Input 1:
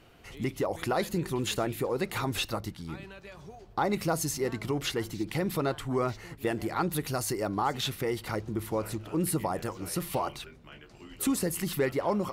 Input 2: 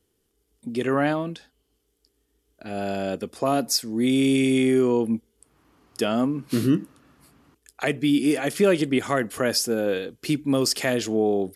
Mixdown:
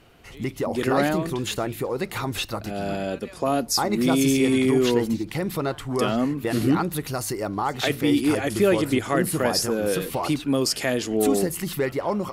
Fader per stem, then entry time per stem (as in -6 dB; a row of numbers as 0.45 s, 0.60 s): +3.0 dB, -0.5 dB; 0.00 s, 0.00 s